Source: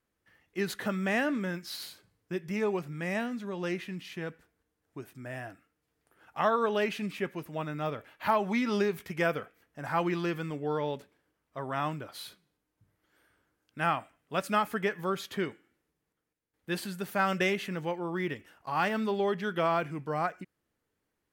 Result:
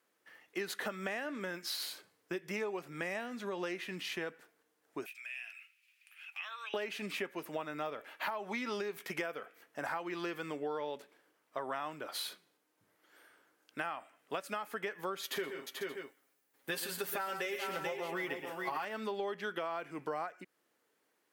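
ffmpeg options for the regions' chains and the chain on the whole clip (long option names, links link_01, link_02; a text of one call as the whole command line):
ffmpeg -i in.wav -filter_complex "[0:a]asettb=1/sr,asplit=3[link_01][link_02][link_03];[link_01]atrim=end=5.064[link_04];[link_02]atrim=start=5.06:end=6.74,asetpts=PTS-STARTPTS,afade=type=in:duration=0.004:curve=qsin,afade=type=out:start_time=1.676:duration=0.004:curve=qsin,highpass=frequency=2500:width_type=q:width=11,acompressor=threshold=-54dB:ratio=2.5:attack=3.2:release=140:knee=1:detection=peak[link_05];[link_03]atrim=start=6.736[link_06];[link_04][link_05]acrossfade=duration=0.004:curve1=hsin:curve2=qsin[link_07];[link_07][link_06]acrossfade=duration=0.004:curve1=qsin:curve2=hsin,asettb=1/sr,asplit=3[link_08][link_09][link_10];[link_08]atrim=end=15.234[link_11];[link_09]atrim=start=15.23:end=18.85,asetpts=PTS-STARTPTS,afade=type=in:duration=0.004:curve=qsin,afade=type=out:start_time=3.616:duration=0.004:curve=qsin,highshelf=frequency=11000:gain=10,aecho=1:1:7.4:0.67,atrim=end_sample=159642,aecho=1:1:119|158|436|576:0.299|0.141|0.316|0.126,atrim=end_sample=159642[link_12];[link_10]atrim=start=18.846[link_13];[link_11][link_12]acrossfade=duration=0.004:curve1=hsin:curve2=qsin[link_14];[link_14][link_13]acrossfade=duration=0.004:curve1=qsin:curve2=hsin,highpass=360,alimiter=limit=-21dB:level=0:latency=1:release=352,acompressor=threshold=-42dB:ratio=6,volume=6.5dB" out.wav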